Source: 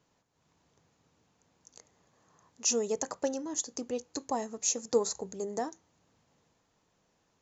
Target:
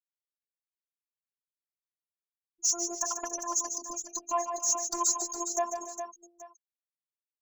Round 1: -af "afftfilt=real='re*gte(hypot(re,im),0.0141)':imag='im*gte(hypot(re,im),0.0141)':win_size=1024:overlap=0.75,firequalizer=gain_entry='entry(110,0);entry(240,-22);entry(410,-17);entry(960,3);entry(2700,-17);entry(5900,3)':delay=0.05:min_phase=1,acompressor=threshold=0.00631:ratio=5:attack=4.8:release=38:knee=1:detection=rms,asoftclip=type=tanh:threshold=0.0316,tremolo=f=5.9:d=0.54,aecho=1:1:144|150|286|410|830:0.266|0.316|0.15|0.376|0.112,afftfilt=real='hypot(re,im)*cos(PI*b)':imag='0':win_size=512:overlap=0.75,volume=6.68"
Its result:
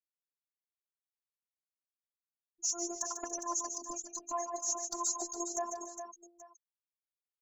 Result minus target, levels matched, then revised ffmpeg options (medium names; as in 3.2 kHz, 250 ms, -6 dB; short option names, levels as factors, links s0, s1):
compression: peak gain reduction +8.5 dB
-af "afftfilt=real='re*gte(hypot(re,im),0.0141)':imag='im*gte(hypot(re,im),0.0141)':win_size=1024:overlap=0.75,firequalizer=gain_entry='entry(110,0);entry(240,-22);entry(410,-17);entry(960,3);entry(2700,-17);entry(5900,3)':delay=0.05:min_phase=1,acompressor=threshold=0.0211:ratio=5:attack=4.8:release=38:knee=1:detection=rms,asoftclip=type=tanh:threshold=0.0316,tremolo=f=5.9:d=0.54,aecho=1:1:144|150|286|410|830:0.266|0.316|0.15|0.376|0.112,afftfilt=real='hypot(re,im)*cos(PI*b)':imag='0':win_size=512:overlap=0.75,volume=6.68"